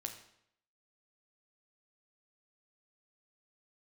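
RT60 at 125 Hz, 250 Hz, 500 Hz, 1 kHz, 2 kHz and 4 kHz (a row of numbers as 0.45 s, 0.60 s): 0.75 s, 0.70 s, 0.75 s, 0.70 s, 0.70 s, 0.65 s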